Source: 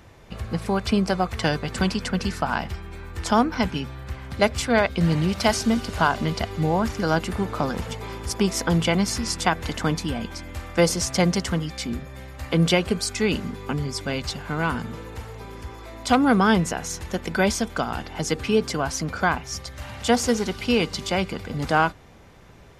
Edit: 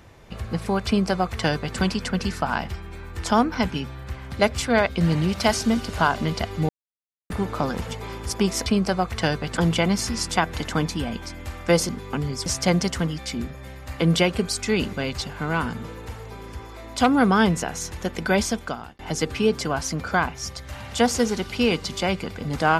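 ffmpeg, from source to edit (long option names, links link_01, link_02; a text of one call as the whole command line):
ffmpeg -i in.wav -filter_complex "[0:a]asplit=9[link_01][link_02][link_03][link_04][link_05][link_06][link_07][link_08][link_09];[link_01]atrim=end=6.69,asetpts=PTS-STARTPTS,afade=type=out:start_time=6.686:duration=0.004:curve=hsin[link_10];[link_02]atrim=start=6.69:end=7.3,asetpts=PTS-STARTPTS,volume=0[link_11];[link_03]atrim=start=7.3:end=8.662,asetpts=PTS-STARTPTS,afade=type=in:duration=0.004:curve=hsin[link_12];[link_04]atrim=start=0.868:end=1.782[link_13];[link_05]atrim=start=8.658:end=10.982[link_14];[link_06]atrim=start=13.448:end=14.022[link_15];[link_07]atrim=start=10.978:end=13.452[link_16];[link_08]atrim=start=14.018:end=18.08,asetpts=PTS-STARTPTS,afade=type=out:start_time=3.592:duration=0.47[link_17];[link_09]atrim=start=18.08,asetpts=PTS-STARTPTS,afade=type=in:duration=0.004:curve=hsin[link_18];[link_10][link_11][link_12]concat=n=3:v=0:a=1[link_19];[link_19][link_13]acrossfade=duration=0.004:curve1=hsin:curve2=hsin[link_20];[link_20][link_14]acrossfade=duration=0.004:curve1=hsin:curve2=hsin[link_21];[link_21][link_15]acrossfade=duration=0.004:curve1=hsin:curve2=hsin[link_22];[link_22][link_16]acrossfade=duration=0.004:curve1=hsin:curve2=hsin[link_23];[link_17][link_18]concat=n=2:v=0:a=1[link_24];[link_23][link_24]acrossfade=duration=0.004:curve1=hsin:curve2=hsin" out.wav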